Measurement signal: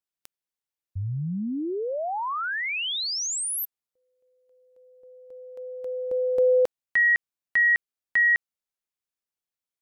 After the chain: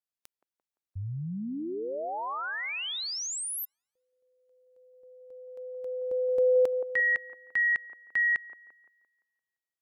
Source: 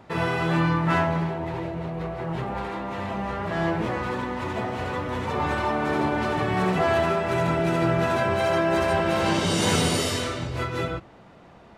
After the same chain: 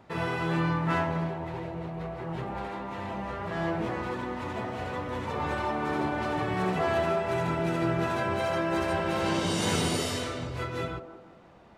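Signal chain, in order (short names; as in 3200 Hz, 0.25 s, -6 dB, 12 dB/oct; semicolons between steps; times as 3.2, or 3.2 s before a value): band-limited delay 0.172 s, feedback 42%, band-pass 540 Hz, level -8 dB; gain -5.5 dB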